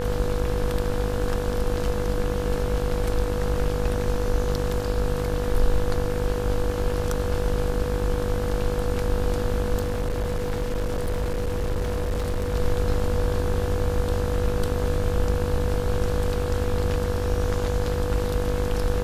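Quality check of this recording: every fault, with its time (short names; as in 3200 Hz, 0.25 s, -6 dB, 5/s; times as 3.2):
buzz 50 Hz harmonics 35 -28 dBFS
tone 490 Hz -28 dBFS
9.82–12.55 clipped -21.5 dBFS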